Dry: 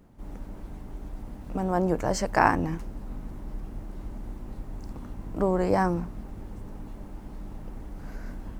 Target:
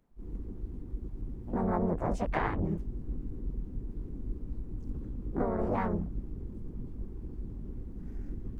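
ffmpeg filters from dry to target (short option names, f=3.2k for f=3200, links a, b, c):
-filter_complex "[0:a]afwtdn=0.02,acrossover=split=120[a][b];[b]acompressor=threshold=-28dB:ratio=6[c];[a][c]amix=inputs=2:normalize=0,asplit=4[d][e][f][g];[e]asetrate=22050,aresample=44100,atempo=2,volume=-5dB[h];[f]asetrate=52444,aresample=44100,atempo=0.840896,volume=-2dB[i];[g]asetrate=55563,aresample=44100,atempo=0.793701,volume=-5dB[j];[d][h][i][j]amix=inputs=4:normalize=0,volume=-3dB"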